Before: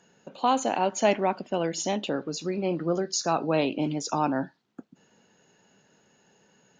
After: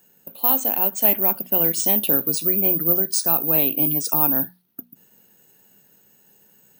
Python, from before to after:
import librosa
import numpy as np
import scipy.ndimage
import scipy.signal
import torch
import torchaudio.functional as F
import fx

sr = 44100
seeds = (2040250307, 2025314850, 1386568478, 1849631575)

y = (np.kron(scipy.signal.resample_poly(x, 1, 3), np.eye(3)[0]) * 3)[:len(x)]
y = fx.high_shelf(y, sr, hz=2300.0, db=8.5)
y = fx.rider(y, sr, range_db=10, speed_s=0.5)
y = fx.low_shelf(y, sr, hz=380.0, db=8.0)
y = fx.hum_notches(y, sr, base_hz=60, count=4)
y = F.gain(torch.from_numpy(y), -5.0).numpy()